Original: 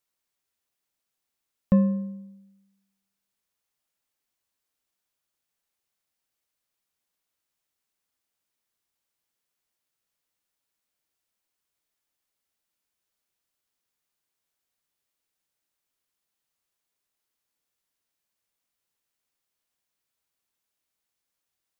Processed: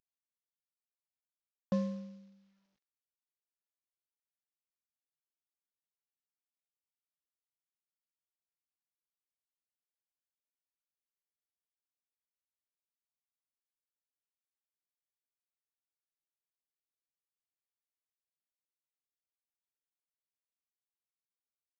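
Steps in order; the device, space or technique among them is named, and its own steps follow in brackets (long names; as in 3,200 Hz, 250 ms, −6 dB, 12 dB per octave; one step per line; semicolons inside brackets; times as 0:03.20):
early wireless headset (high-pass filter 260 Hz 12 dB per octave; variable-slope delta modulation 32 kbit/s)
level −7 dB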